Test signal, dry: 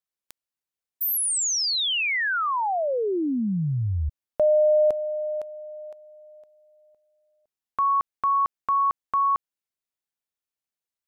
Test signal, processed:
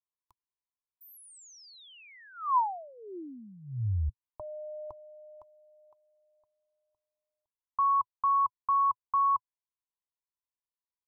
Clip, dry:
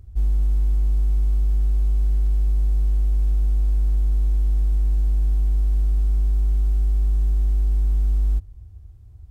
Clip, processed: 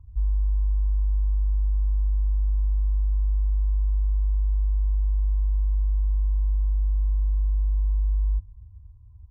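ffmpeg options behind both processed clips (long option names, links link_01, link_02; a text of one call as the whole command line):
ffmpeg -i in.wav -af "firequalizer=gain_entry='entry(110,0);entry(160,-23);entry(350,-11);entry(520,-25);entry(1000,7);entry(1500,-25)':delay=0.05:min_phase=1,volume=-3.5dB" out.wav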